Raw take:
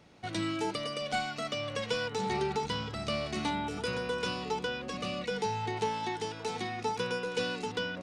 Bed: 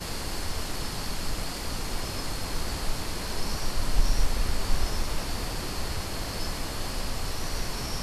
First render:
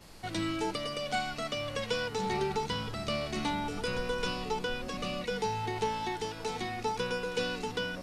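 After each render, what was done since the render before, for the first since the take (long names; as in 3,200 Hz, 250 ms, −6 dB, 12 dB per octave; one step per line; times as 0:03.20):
mix in bed −20 dB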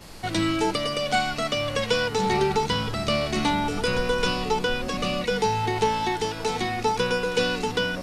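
level +9 dB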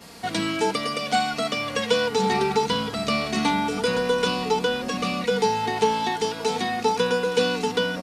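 high-pass filter 110 Hz 12 dB per octave
comb filter 4.3 ms, depth 51%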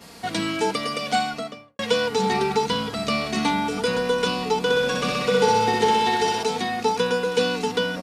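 0:01.16–0:01.79: fade out and dull
0:04.60–0:06.43: flutter between parallel walls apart 10.8 metres, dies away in 1.4 s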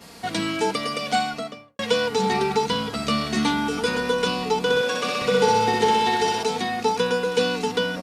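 0:02.92–0:04.13: double-tracking delay 13 ms −5 dB
0:04.81–0:05.22: high-pass filter 290 Hz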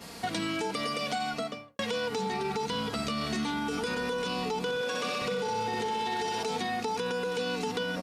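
brickwall limiter −18 dBFS, peak gain reduction 11 dB
downward compressor 4 to 1, threshold −29 dBFS, peak gain reduction 6 dB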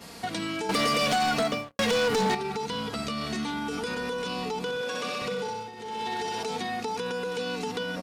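0:00.69–0:02.35: leveller curve on the samples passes 3
0:05.43–0:06.06: duck −12 dB, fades 0.29 s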